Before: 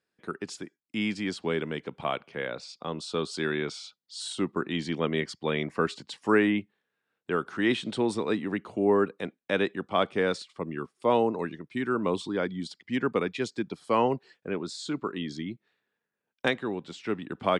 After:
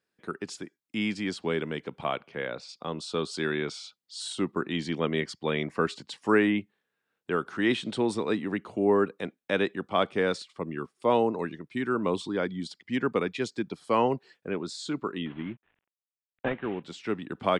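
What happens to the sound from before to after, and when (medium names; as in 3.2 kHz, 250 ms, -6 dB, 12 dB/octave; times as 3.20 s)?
2.07–2.69 s: treble shelf 6.7 kHz -6.5 dB
15.26–16.83 s: CVSD coder 16 kbps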